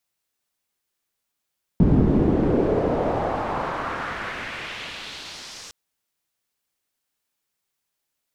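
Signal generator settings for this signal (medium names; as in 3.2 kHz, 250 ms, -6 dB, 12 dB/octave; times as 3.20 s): swept filtered noise white, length 3.91 s lowpass, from 200 Hz, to 6.2 kHz, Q 1.8, exponential, gain ramp -40 dB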